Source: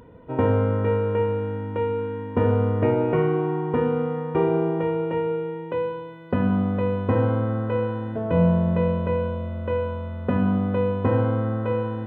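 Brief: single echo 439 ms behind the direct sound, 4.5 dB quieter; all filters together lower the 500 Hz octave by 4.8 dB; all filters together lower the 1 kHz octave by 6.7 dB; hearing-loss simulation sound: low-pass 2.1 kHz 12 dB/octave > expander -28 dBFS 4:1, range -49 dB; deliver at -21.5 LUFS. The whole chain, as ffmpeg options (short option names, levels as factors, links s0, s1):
-af "lowpass=2100,equalizer=f=500:t=o:g=-4,equalizer=f=1000:t=o:g=-6.5,aecho=1:1:439:0.596,agate=range=0.00355:threshold=0.0398:ratio=4,volume=1.41"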